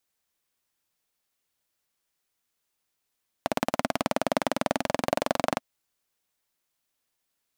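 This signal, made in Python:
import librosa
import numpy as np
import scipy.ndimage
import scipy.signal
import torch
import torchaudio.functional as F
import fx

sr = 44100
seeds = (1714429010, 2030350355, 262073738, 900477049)

y = fx.engine_single_rev(sr, seeds[0], length_s=2.14, rpm=2100, resonances_hz=(260.0, 600.0), end_rpm=2800)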